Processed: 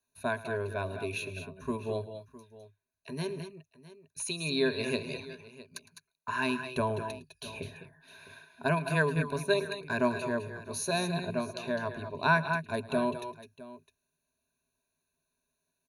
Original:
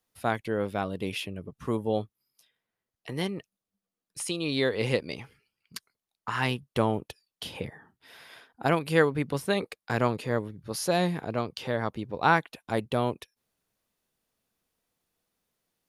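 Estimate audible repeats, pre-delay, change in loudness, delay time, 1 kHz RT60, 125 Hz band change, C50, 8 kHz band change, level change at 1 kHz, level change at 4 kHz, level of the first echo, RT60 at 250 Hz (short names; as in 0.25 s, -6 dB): 3, none, -3.0 dB, 0.109 s, none, -3.5 dB, none, -0.5 dB, -3.5 dB, -2.5 dB, -19.0 dB, none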